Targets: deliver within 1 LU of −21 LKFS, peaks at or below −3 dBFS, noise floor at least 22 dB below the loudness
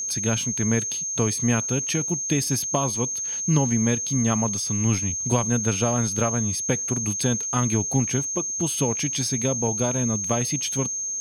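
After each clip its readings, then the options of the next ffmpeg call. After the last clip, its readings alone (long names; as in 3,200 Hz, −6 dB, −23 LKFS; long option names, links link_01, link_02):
interfering tone 6,400 Hz; level of the tone −26 dBFS; integrated loudness −23.0 LKFS; sample peak −8.0 dBFS; target loudness −21.0 LKFS
→ -af "bandreject=frequency=6400:width=30"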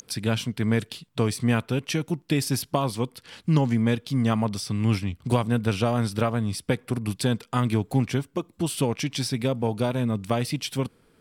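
interfering tone none found; integrated loudness −26.0 LKFS; sample peak −9.0 dBFS; target loudness −21.0 LKFS
→ -af "volume=5dB"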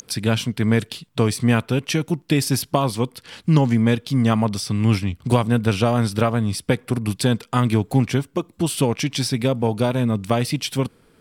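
integrated loudness −21.0 LKFS; sample peak −4.0 dBFS; background noise floor −57 dBFS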